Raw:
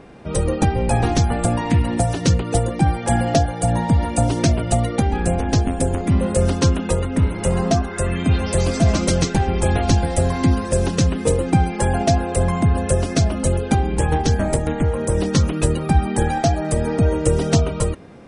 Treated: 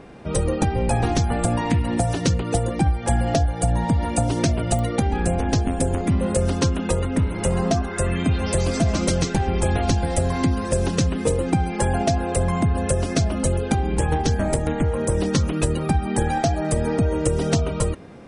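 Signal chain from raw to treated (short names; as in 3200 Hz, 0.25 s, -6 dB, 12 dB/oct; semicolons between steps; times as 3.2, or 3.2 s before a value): 2.76–3.85 bell 61 Hz +11 dB 0.7 oct; compressor 6:1, threshold -16 dBFS, peak gain reduction 10 dB; pops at 4.79, -18 dBFS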